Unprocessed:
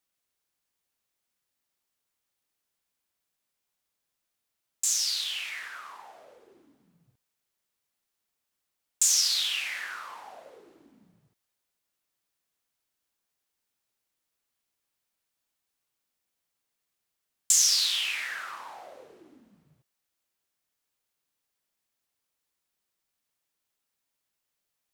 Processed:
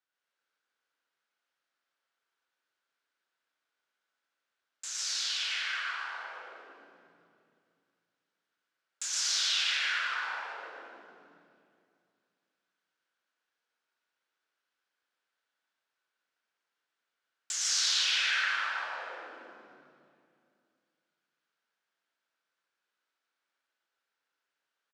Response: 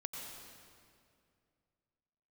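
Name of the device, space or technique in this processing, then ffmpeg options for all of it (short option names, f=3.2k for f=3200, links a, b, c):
station announcement: -filter_complex "[0:a]highpass=340,lowpass=4.4k,equalizer=f=1.5k:t=o:w=0.36:g=11,aecho=1:1:113.7|148.7:0.631|0.794[a];[1:a]atrim=start_sample=2205[b];[a][b]afir=irnorm=-1:irlink=0,volume=-1dB"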